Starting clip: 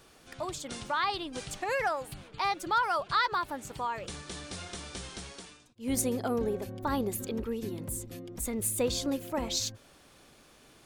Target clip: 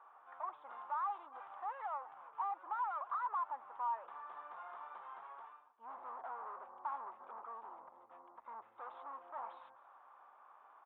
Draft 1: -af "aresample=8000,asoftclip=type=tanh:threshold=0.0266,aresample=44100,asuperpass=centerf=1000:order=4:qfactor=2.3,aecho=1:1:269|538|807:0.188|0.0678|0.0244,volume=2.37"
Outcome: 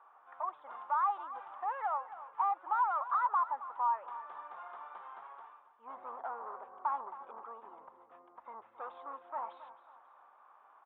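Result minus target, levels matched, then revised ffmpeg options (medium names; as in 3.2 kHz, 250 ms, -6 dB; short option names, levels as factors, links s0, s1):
echo-to-direct +9 dB; saturation: distortion -5 dB
-af "aresample=8000,asoftclip=type=tanh:threshold=0.00944,aresample=44100,asuperpass=centerf=1000:order=4:qfactor=2.3,aecho=1:1:269|538:0.0668|0.0241,volume=2.37"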